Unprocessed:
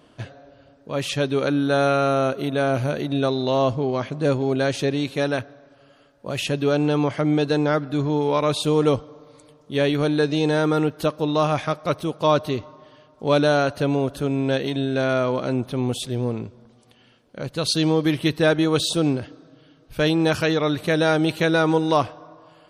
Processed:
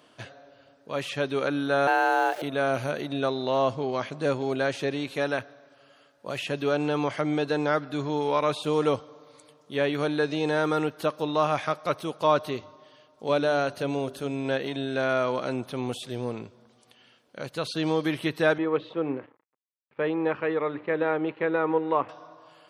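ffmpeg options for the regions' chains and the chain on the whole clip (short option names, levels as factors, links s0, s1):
-filter_complex "[0:a]asettb=1/sr,asplit=3[s0][s1][s2];[s0]atrim=end=1.874[s3];[s1]atrim=start=1.87:end=2.42,asetpts=PTS-STARTPTS,afade=t=in:d=0.004:c=qsin,afade=t=out:st=0.546:d=0.004:c=qsin,afreqshift=180,aeval=exprs='val(0)*gte(abs(val(0)),0.0158)':c=same[s4];[s2]atrim=start=2.416[s5];[s3][s4]acrossfade=d=0.004:c1=hsin:c2=qsin[s6];[s6][s5]acrossfade=d=0.004:c1=qsin:c2=hsin,asettb=1/sr,asplit=3[s7][s8][s9];[s7]atrim=end=12.574[s10];[s8]atrim=start=12.57:end=14.45,asetpts=PTS-STARTPTS,afade=t=in:d=0.004:c=qsin,afade=t=out:st=1.876:d=0.004:c=qsin,equalizer=f=1300:w=0.79:g=-4,bandreject=f=50:t=h:w=6,bandreject=f=100:t=h:w=6,bandreject=f=150:t=h:w=6,bandreject=f=200:t=h:w=6,bandreject=f=250:t=h:w=6,bandreject=f=300:t=h:w=6,bandreject=f=350:t=h:w=6,bandreject=f=400:t=h:w=6[s11];[s9]atrim=start=14.446[s12];[s10][s11]acrossfade=d=0.004:c1=hsin:c2=qsin[s13];[s13][s12]acrossfade=d=0.004:c1=qsin:c2=hsin,asettb=1/sr,asplit=3[s14][s15][s16];[s14]atrim=end=18.584[s17];[s15]atrim=start=18.58:end=22.09,asetpts=PTS-STARTPTS,afade=t=in:d=0.004:c=qsin,afade=t=out:st=3.506:d=0.004:c=qsin,bandreject=f=60:t=h:w=6,bandreject=f=120:t=h:w=6,bandreject=f=180:t=h:w=6,bandreject=f=240:t=h:w=6,bandreject=f=300:t=h:w=6,bandreject=f=360:t=h:w=6,aeval=exprs='sgn(val(0))*max(abs(val(0))-0.00841,0)':c=same,highpass=150,equalizer=f=170:t=q:w=4:g=-4,equalizer=f=470:t=q:w=4:g=3,equalizer=f=680:t=q:w=4:g=-7,equalizer=f=1500:t=q:w=4:g=-7,lowpass=f=2000:w=0.5412,lowpass=f=2000:w=1.3066[s18];[s16]atrim=start=22.086[s19];[s17][s18]acrossfade=d=0.004:c1=hsin:c2=qsin[s20];[s20][s19]acrossfade=d=0.004:c1=qsin:c2=hsin,highpass=97,lowshelf=f=450:g=-10,acrossover=split=2500[s21][s22];[s22]acompressor=threshold=0.01:ratio=4:attack=1:release=60[s23];[s21][s23]amix=inputs=2:normalize=0"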